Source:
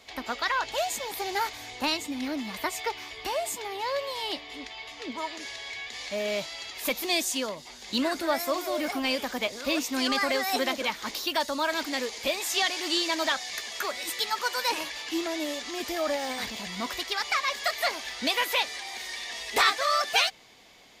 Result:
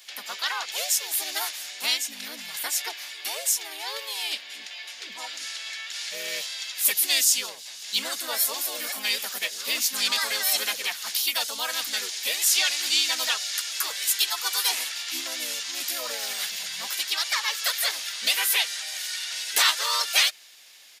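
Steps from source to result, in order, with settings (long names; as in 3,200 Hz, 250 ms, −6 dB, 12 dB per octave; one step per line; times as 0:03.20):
pitch-shifted copies added −4 semitones 0 dB
first difference
level +8.5 dB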